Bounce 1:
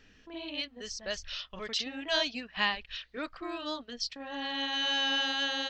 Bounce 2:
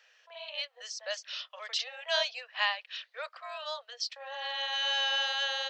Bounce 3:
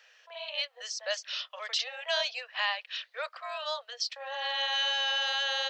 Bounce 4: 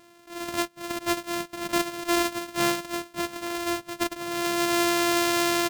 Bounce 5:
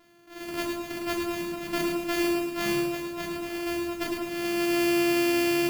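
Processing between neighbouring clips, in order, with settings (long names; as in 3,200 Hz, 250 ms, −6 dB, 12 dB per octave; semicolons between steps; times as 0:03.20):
Butterworth high-pass 500 Hz 96 dB per octave
brickwall limiter −22.5 dBFS, peak gain reduction 6 dB; level +3.5 dB
samples sorted by size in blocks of 128 samples; single-tap delay 685 ms −20.5 dB; level +6 dB
convolution reverb RT60 0.50 s, pre-delay 3 ms, DRR −3 dB; feedback echo at a low word length 107 ms, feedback 35%, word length 7 bits, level −4 dB; level −8 dB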